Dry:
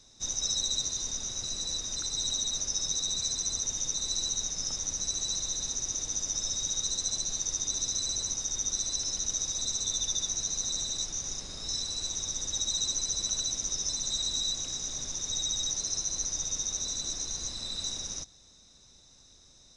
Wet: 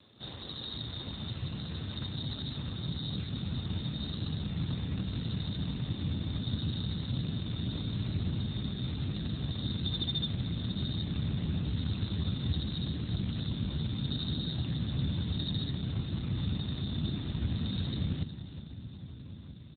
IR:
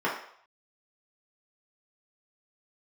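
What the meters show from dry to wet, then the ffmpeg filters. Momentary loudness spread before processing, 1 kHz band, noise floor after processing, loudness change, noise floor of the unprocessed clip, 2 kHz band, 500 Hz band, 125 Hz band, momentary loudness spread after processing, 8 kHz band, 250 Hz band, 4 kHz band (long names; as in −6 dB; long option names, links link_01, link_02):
5 LU, −0.5 dB, −46 dBFS, −5.0 dB, −58 dBFS, +1.0 dB, +2.5 dB, +17.5 dB, 6 LU, below −40 dB, +15.5 dB, −7.0 dB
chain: -filter_complex "[0:a]crystalizer=i=0.5:c=0,asplit=2[link_01][link_02];[link_02]alimiter=limit=-23dB:level=0:latency=1:release=58,volume=-2dB[link_03];[link_01][link_03]amix=inputs=2:normalize=0,asplit=2[link_04][link_05];[link_05]adelay=1283,volume=-15dB,highshelf=frequency=4000:gain=-28.9[link_06];[link_04][link_06]amix=inputs=2:normalize=0,asubboost=boost=10:cutoff=160,asplit=2[link_07][link_08];[link_08]aecho=0:1:367|734|1101|1468|1835|2202:0.2|0.112|0.0626|0.035|0.0196|0.011[link_09];[link_07][link_09]amix=inputs=2:normalize=0,volume=3dB" -ar 8000 -c:a libopencore_amrnb -b:a 7400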